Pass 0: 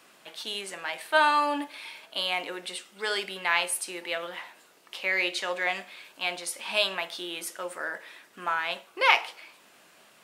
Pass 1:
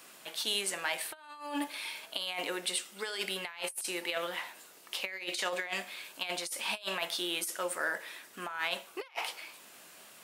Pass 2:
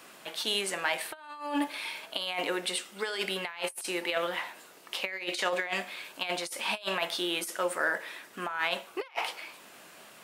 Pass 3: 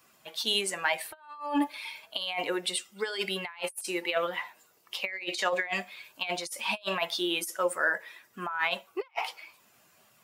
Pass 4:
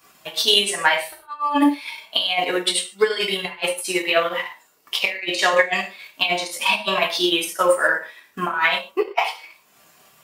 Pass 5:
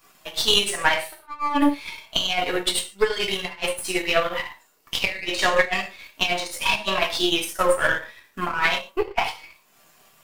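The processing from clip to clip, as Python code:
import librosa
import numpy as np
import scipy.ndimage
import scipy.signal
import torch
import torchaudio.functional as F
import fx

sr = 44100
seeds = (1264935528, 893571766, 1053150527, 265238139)

y1 = fx.high_shelf(x, sr, hz=6300.0, db=10.5)
y1 = fx.over_compress(y1, sr, threshold_db=-31.0, ratio=-0.5)
y1 = y1 * librosa.db_to_amplitude(-4.0)
y2 = fx.high_shelf(y1, sr, hz=3700.0, db=-8.0)
y2 = y2 * librosa.db_to_amplitude(5.5)
y3 = fx.bin_expand(y2, sr, power=1.5)
y3 = y3 * librosa.db_to_amplitude(4.0)
y4 = fx.rev_gated(y3, sr, seeds[0], gate_ms=170, shape='falling', drr_db=-2.5)
y4 = fx.transient(y4, sr, attack_db=6, sustain_db=-6)
y4 = y4 * librosa.db_to_amplitude(5.0)
y5 = np.where(y4 < 0.0, 10.0 ** (-7.0 / 20.0) * y4, y4)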